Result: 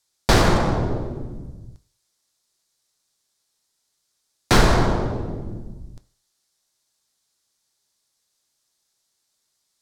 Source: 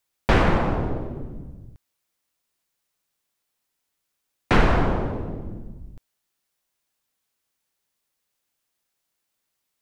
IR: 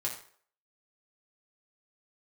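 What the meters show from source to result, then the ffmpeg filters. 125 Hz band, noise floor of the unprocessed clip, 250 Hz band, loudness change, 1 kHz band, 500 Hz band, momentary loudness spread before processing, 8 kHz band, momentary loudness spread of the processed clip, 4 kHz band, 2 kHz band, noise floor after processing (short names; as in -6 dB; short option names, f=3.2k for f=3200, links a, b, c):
+3.0 dB, -79 dBFS, +2.0 dB, +2.5 dB, +2.5 dB, +2.5 dB, 19 LU, n/a, 20 LU, +8.5 dB, +1.5 dB, -74 dBFS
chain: -filter_complex "[0:a]adynamicsmooth=sensitivity=6:basefreq=5.7k,aexciter=amount=6:drive=6.7:freq=3.9k,asplit=2[a][b];[1:a]atrim=start_sample=2205,lowpass=4.6k[c];[b][c]afir=irnorm=-1:irlink=0,volume=-10dB[d];[a][d]amix=inputs=2:normalize=0"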